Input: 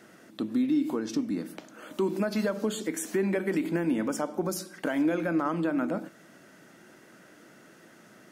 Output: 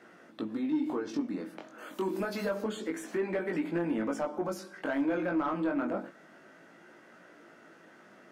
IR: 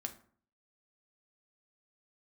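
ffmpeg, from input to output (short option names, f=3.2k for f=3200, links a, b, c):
-filter_complex "[0:a]asettb=1/sr,asplit=3[a][b][c];[a]atrim=end=1.784[d];[b]atrim=start=1.78:end=2.62,asetpts=PTS-STARTPTS,afade=t=in:d=0.004:c=qsin,afade=t=out:st=0.836:d=0.004:c=qsin,aemphasis=mode=production:type=50fm[e];[c]atrim=start=2.616[f];[d][e]acrossfade=d=0.004:c1=hsin:c2=qsin[g];[g][f]acrossfade=d=0.004:c1=qsin:c2=hsin,flanger=delay=17:depth=5.1:speed=0.28,asplit=2[h][i];[i]highpass=f=720:p=1,volume=14dB,asoftclip=type=tanh:threshold=-18.5dB[j];[h][j]amix=inputs=2:normalize=0,lowpass=f=1.2k:p=1,volume=-6dB,volume=-1.5dB"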